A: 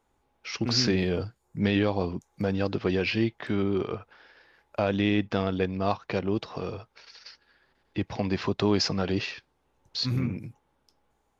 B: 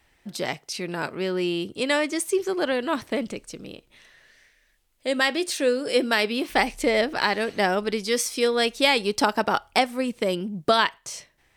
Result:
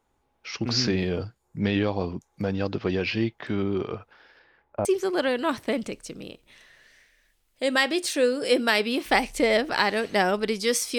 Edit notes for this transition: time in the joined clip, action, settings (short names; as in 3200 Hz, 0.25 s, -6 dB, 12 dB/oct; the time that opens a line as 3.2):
A
4.39–4.85 LPF 5000 Hz -> 1000 Hz
4.85 switch to B from 2.29 s